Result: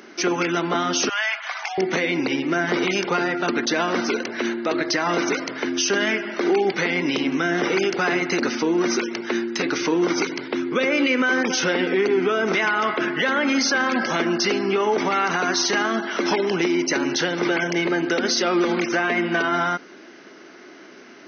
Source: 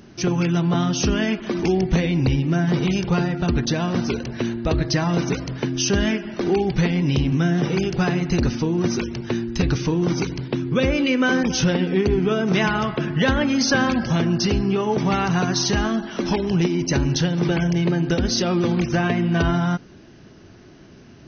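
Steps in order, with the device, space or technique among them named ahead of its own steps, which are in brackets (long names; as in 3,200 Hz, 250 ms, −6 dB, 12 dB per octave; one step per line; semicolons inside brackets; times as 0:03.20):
laptop speaker (high-pass filter 280 Hz 24 dB per octave; parametric band 1,400 Hz +6 dB 0.6 octaves; parametric band 2,100 Hz +8.5 dB 0.2 octaves; brickwall limiter −16.5 dBFS, peak gain reduction 11 dB)
0:01.09–0:01.78: elliptic high-pass filter 720 Hz, stop band 50 dB
level +4.5 dB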